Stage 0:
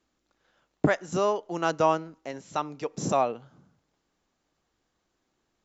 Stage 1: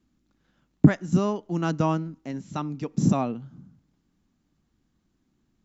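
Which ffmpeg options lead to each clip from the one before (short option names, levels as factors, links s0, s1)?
-af "lowshelf=f=340:t=q:w=1.5:g=12.5,volume=0.708"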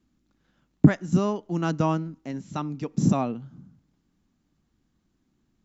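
-af anull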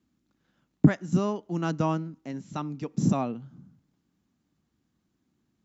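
-af "highpass=74,volume=0.75"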